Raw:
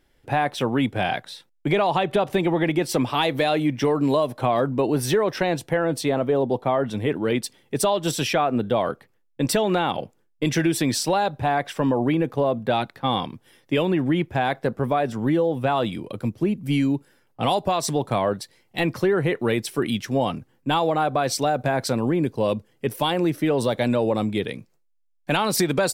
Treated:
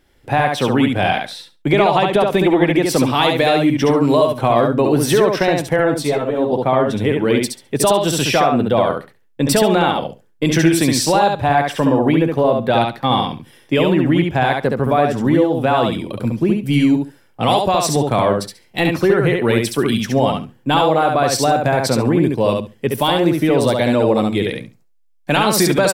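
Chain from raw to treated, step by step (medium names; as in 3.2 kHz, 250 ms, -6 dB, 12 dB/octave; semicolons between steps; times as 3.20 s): on a send: feedback delay 69 ms, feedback 16%, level -3.5 dB; 5.94–6.53 s: on the sum: three-phase chorus; trim +5.5 dB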